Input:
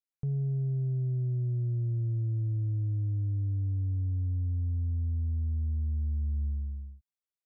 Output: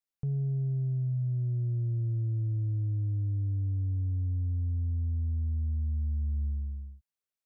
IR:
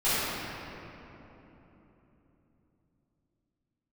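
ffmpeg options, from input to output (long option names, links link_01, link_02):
-af "bandreject=frequency=380:width=12"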